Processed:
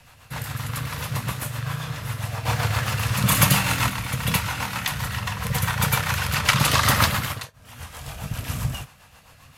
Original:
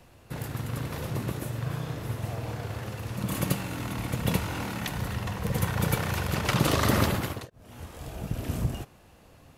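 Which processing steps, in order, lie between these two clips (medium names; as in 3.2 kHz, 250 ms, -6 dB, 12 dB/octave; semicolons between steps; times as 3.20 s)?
FFT filter 130 Hz 0 dB, 370 Hz -11 dB, 1 kHz +8 dB; 2.45–3.90 s: waveshaping leveller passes 2; rotary cabinet horn 7.5 Hz; gated-style reverb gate 80 ms falling, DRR 10.5 dB; trim +3.5 dB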